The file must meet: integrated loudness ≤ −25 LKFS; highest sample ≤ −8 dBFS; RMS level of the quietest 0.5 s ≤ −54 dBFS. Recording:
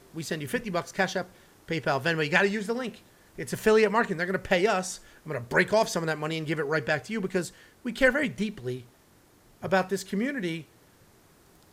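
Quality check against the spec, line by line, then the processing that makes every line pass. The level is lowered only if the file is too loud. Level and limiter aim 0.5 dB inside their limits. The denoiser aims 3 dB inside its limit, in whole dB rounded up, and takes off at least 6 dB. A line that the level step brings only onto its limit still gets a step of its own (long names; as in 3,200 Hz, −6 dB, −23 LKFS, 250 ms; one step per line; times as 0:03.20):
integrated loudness −27.5 LKFS: in spec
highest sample −7.0 dBFS: out of spec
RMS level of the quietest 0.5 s −59 dBFS: in spec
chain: brickwall limiter −8.5 dBFS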